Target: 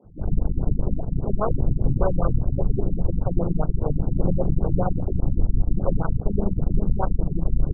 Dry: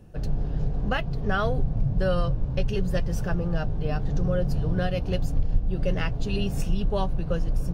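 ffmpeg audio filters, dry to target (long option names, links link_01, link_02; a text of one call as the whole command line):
ffmpeg -i in.wav -filter_complex "[0:a]aeval=exprs='0.299*(cos(1*acos(clip(val(0)/0.299,-1,1)))-cos(1*PI/2))+0.0596*(cos(8*acos(clip(val(0)/0.299,-1,1)))-cos(8*PI/2))':channel_layout=same,acrossover=split=230[link_01][link_02];[link_01]adelay=40[link_03];[link_03][link_02]amix=inputs=2:normalize=0,afftfilt=real='re*lt(b*sr/1024,280*pow(1600/280,0.5+0.5*sin(2*PI*5*pts/sr)))':imag='im*lt(b*sr/1024,280*pow(1600/280,0.5+0.5*sin(2*PI*5*pts/sr)))':win_size=1024:overlap=0.75,volume=2dB" out.wav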